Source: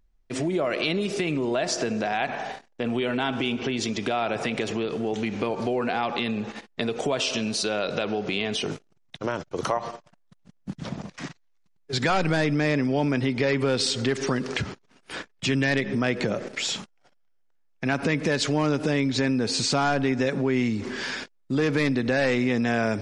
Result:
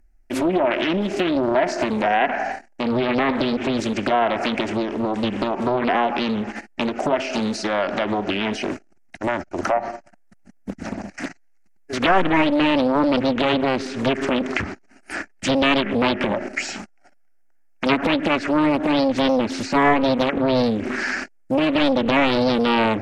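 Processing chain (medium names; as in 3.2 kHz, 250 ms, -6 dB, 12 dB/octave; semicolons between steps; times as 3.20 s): low-pass that closes with the level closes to 2.4 kHz, closed at -21 dBFS; static phaser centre 710 Hz, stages 8; loudspeaker Doppler distortion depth 0.93 ms; trim +9 dB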